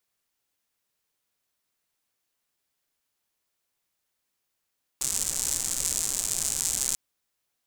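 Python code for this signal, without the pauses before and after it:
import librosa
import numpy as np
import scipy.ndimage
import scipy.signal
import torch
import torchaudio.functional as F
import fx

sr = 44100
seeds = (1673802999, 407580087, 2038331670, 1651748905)

y = fx.rain(sr, seeds[0], length_s=1.94, drops_per_s=170.0, hz=7500.0, bed_db=-13.0)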